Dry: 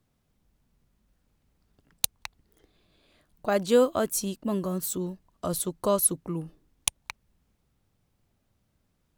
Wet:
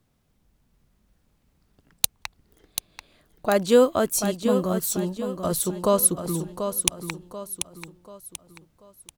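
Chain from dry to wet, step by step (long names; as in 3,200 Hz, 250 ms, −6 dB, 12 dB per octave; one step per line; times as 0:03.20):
repeating echo 737 ms, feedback 39%, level −8 dB
level +4 dB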